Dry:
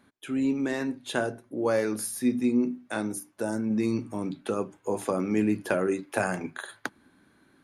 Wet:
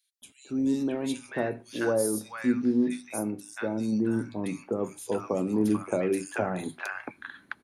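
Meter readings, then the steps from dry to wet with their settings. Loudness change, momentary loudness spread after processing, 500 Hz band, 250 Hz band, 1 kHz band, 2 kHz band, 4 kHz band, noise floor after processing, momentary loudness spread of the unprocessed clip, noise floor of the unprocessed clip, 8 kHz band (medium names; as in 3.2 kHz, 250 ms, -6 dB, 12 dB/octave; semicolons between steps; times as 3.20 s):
-0.5 dB, 9 LU, -0.5 dB, 0.0 dB, -2.0 dB, -2.0 dB, -2.5 dB, -61 dBFS, 8 LU, -64 dBFS, 0.0 dB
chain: three bands offset in time highs, lows, mids 220/660 ms, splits 1.1/3.3 kHz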